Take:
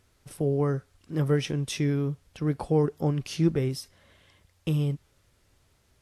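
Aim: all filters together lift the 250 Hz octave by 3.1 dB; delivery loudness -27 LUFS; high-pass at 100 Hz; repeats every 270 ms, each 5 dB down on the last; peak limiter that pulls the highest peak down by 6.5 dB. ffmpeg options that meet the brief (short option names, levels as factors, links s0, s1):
-af "highpass=100,equalizer=f=250:t=o:g=5,alimiter=limit=0.158:level=0:latency=1,aecho=1:1:270|540|810|1080|1350|1620|1890:0.562|0.315|0.176|0.0988|0.0553|0.031|0.0173,volume=1.06"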